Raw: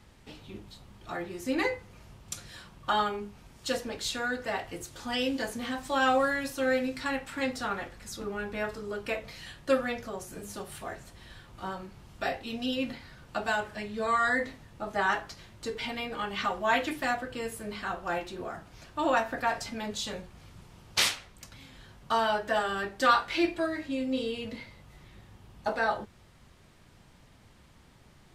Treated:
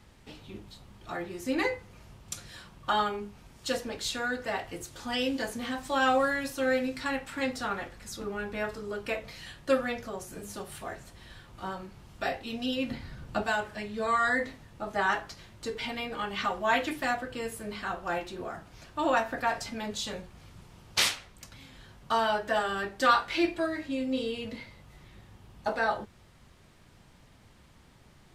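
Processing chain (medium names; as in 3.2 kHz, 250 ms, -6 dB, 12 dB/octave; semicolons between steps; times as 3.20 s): 12.91–13.43 s: bass shelf 330 Hz +10 dB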